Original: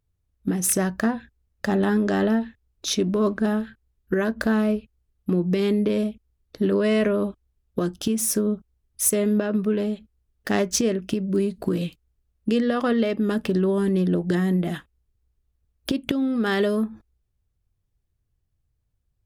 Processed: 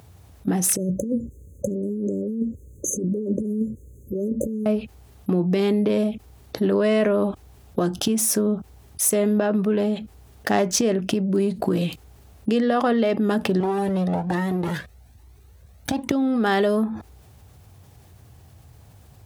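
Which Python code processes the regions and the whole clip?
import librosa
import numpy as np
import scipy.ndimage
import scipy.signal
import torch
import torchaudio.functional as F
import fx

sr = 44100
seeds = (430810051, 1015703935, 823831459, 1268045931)

y = fx.chain(x, sr, fx.high_shelf(hz=10000.0, db=-8.0),
    fx.over_compress(threshold_db=-27.0, ratio=-0.5),
    fx.brickwall_bandstop(low_hz=590.0, high_hz=6200.0), at=(0.76, 4.66))
y = fx.chain(y, sr, fx.lower_of_two(delay_ms=0.49),
    fx.comb_cascade(direction='rising', hz=1.2), at=(13.6, 16.11))
y = scipy.signal.sosfilt(scipy.signal.butter(4, 74.0, 'highpass', fs=sr, output='sos'), y)
y = fx.peak_eq(y, sr, hz=780.0, db=8.5, octaves=0.69)
y = fx.env_flatten(y, sr, amount_pct=50)
y = y * librosa.db_to_amplitude(-1.0)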